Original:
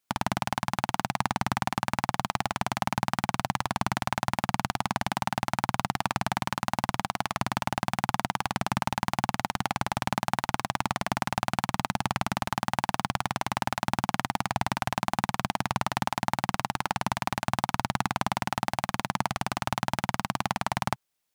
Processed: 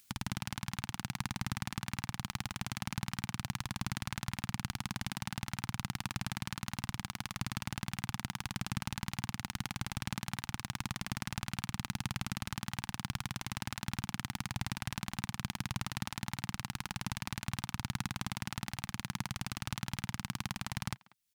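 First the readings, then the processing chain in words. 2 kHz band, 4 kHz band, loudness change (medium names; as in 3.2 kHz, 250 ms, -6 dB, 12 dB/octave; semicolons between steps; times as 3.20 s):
-9.5 dB, -6.0 dB, -9.5 dB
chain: amplifier tone stack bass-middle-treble 6-0-2; upward compressor, threshold -58 dBFS; speakerphone echo 190 ms, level -20 dB; trim +10 dB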